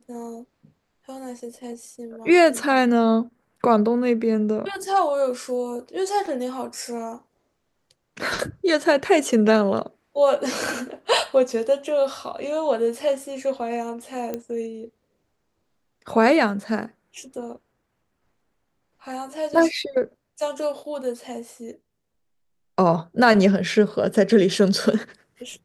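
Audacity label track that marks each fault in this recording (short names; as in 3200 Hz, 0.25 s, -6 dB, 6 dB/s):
6.260000	6.260000	gap 3.7 ms
14.340000	14.340000	pop -15 dBFS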